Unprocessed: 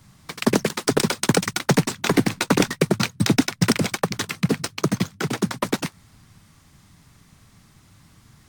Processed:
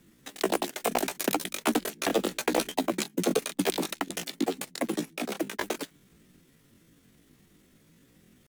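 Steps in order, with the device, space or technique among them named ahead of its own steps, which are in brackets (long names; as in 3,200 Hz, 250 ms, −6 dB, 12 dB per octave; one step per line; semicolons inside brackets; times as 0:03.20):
chipmunk voice (pitch shifter +9 semitones)
level −7.5 dB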